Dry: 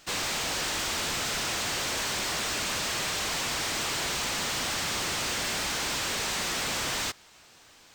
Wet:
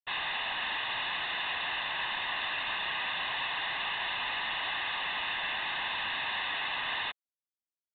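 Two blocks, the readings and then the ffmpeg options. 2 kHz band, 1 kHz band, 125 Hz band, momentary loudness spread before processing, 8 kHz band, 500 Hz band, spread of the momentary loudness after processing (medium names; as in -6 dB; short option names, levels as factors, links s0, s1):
+0.5 dB, -1.0 dB, -15.0 dB, 0 LU, under -40 dB, -9.5 dB, 0 LU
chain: -af "highpass=840,aecho=1:1:1.1:0.91,aresample=8000,acrusher=bits=5:mix=0:aa=0.5,aresample=44100,volume=0.75"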